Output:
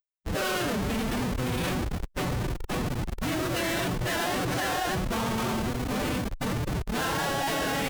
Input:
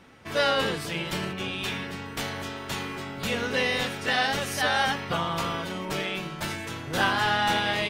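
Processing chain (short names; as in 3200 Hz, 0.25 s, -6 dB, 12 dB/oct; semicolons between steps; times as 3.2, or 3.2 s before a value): Schmitt trigger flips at -29 dBFS; added harmonics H 5 -22 dB, 6 -15 dB, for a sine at -22 dBFS; formant-preserving pitch shift +5 st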